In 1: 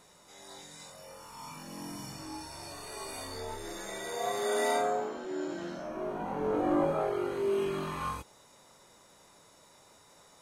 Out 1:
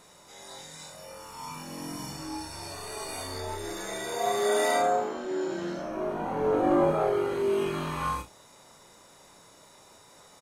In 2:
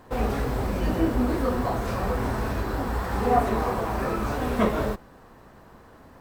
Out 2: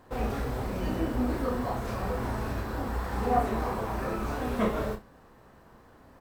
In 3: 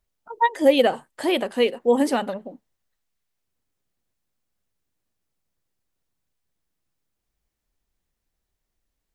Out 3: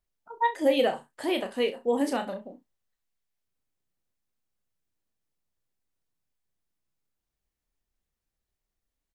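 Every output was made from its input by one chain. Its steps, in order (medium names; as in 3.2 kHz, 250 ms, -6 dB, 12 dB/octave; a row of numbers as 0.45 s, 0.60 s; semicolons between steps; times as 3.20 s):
early reflections 32 ms -7.5 dB, 66 ms -16.5 dB; peak normalisation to -12 dBFS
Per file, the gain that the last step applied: +3.5 dB, -5.5 dB, -7.0 dB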